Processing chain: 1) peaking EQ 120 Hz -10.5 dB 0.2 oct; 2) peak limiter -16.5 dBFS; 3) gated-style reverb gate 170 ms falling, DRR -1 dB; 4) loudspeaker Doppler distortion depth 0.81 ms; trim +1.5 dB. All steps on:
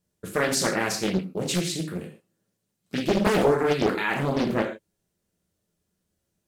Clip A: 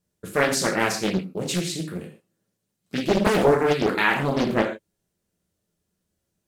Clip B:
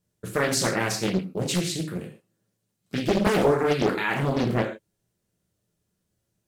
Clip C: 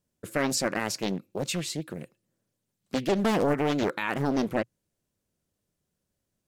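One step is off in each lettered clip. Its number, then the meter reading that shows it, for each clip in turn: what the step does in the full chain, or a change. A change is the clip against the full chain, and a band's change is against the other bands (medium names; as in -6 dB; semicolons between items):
2, 2 kHz band +2.5 dB; 1, 125 Hz band +2.5 dB; 3, momentary loudness spread change -3 LU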